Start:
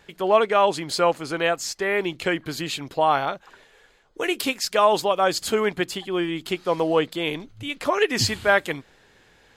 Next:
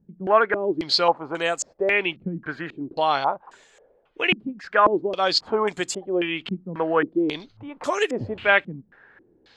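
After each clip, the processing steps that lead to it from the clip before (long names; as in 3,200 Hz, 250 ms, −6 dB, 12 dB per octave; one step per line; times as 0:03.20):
low-shelf EQ 120 Hz −8.5 dB
low-pass on a step sequencer 3.7 Hz 200–7,500 Hz
level −2 dB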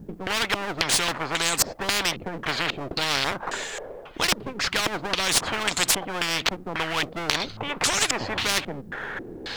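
gain on one half-wave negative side −3 dB
every bin compressed towards the loudest bin 10 to 1
level +4 dB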